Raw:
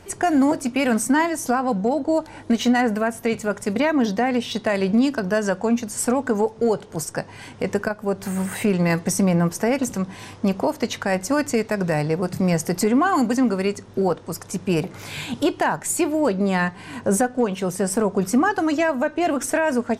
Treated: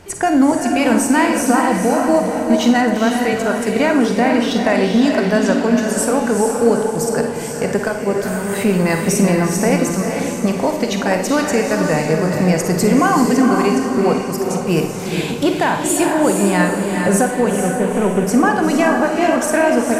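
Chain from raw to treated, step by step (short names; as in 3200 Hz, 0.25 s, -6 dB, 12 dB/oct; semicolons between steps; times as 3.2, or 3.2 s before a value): 17.56–18.27 CVSD 16 kbps; diffused feedback echo 0.451 s, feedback 43%, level -4 dB; Schroeder reverb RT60 0.62 s, DRR 6 dB; gain +3.5 dB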